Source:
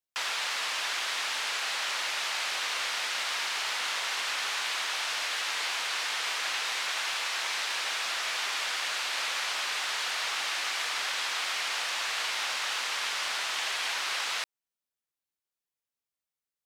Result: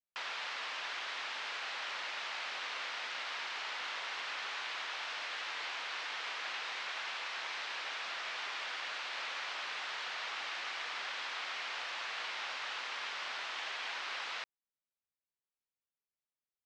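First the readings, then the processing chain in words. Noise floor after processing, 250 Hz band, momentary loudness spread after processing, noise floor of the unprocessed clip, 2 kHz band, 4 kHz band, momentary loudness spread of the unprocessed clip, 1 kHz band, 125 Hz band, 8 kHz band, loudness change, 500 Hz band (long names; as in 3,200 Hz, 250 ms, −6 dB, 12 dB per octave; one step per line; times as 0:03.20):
below −85 dBFS, −6.5 dB, 0 LU, below −85 dBFS, −7.5 dB, −10.0 dB, 0 LU, −7.0 dB, can't be measured, −18.0 dB, −9.0 dB, −6.5 dB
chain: high-frequency loss of the air 160 metres
level −6 dB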